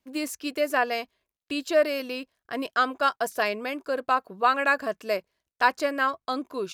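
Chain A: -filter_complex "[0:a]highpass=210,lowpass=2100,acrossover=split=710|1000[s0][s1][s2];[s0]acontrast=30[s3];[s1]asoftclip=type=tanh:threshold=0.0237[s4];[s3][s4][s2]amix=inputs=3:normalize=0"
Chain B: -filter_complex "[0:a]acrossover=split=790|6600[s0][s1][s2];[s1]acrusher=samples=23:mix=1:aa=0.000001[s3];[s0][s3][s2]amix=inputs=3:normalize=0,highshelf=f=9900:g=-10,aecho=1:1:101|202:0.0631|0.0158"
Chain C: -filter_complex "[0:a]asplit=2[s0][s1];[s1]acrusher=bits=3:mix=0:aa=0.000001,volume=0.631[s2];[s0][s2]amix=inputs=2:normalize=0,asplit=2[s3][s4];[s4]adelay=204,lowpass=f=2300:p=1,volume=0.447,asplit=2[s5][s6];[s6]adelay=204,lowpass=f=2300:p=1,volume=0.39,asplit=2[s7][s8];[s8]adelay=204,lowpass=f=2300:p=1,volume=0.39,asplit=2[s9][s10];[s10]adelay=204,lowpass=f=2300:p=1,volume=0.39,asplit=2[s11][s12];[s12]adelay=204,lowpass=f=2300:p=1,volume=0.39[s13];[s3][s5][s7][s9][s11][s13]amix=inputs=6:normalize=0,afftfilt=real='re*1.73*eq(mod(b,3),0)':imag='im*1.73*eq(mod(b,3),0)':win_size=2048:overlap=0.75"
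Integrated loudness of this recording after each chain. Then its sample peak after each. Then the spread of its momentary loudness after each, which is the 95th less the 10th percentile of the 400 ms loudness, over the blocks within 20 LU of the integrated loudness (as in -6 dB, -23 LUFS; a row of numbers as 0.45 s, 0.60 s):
-25.5 LUFS, -28.5 LUFS, -24.5 LUFS; -8.5 dBFS, -8.5 dBFS, -5.0 dBFS; 9 LU, 10 LU, 13 LU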